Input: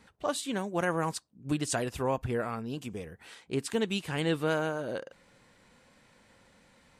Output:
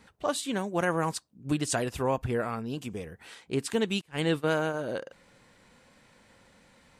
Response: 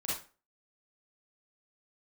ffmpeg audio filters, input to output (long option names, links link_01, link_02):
-filter_complex "[0:a]asettb=1/sr,asplit=3[link_01][link_02][link_03];[link_01]atrim=end=4.014[link_04];[link_02]atrim=start=4.01:end=4.74,asetpts=PTS-STARTPTS,afade=type=in:duration=0.004:curve=qsin,afade=type=out:start_time=0.726:duration=0.004:curve=qsin,agate=range=-25dB:threshold=-31dB:ratio=16:detection=peak[link_05];[link_03]atrim=start=4.736[link_06];[link_04][link_05]acrossfade=duration=0.004:curve1=hsin:curve2=qsin[link_07];[link_07][link_06]acrossfade=duration=0.004:curve1=qsin:curve2=hsin,volume=2dB"